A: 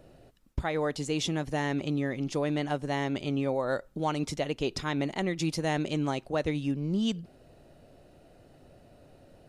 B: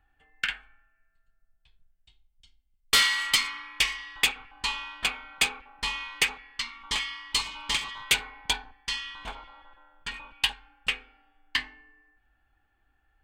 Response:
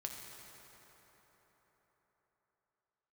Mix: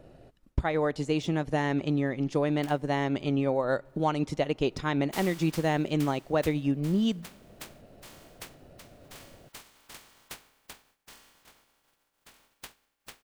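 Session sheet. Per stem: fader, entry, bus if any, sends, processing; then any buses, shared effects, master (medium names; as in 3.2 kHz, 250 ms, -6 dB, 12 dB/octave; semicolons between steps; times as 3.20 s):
+2.0 dB, 0.00 s, send -23.5 dB, de-esser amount 80%; transient shaper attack +2 dB, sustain -4 dB
-16.0 dB, 2.20 s, no send, spectral contrast reduction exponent 0.13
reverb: on, RT60 4.6 s, pre-delay 4 ms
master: treble shelf 3.5 kHz -6.5 dB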